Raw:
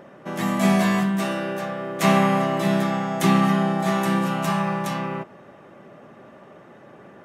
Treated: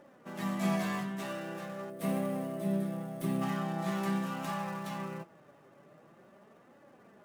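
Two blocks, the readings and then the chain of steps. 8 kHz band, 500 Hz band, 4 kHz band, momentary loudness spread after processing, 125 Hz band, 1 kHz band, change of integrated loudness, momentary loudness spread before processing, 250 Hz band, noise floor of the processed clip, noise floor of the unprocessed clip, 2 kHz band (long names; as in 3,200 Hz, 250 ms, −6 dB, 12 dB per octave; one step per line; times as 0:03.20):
−13.5 dB, −13.0 dB, −15.0 dB, 9 LU, −12.5 dB, −15.0 dB, −13.0 dB, 10 LU, −12.5 dB, −60 dBFS, −47 dBFS, −14.5 dB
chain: gap after every zero crossing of 0.064 ms
flanger 0.44 Hz, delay 3.4 ms, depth 4.1 ms, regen +46%
gain on a spectral selection 0:01.90–0:03.42, 710–8,000 Hz −10 dB
level −8.5 dB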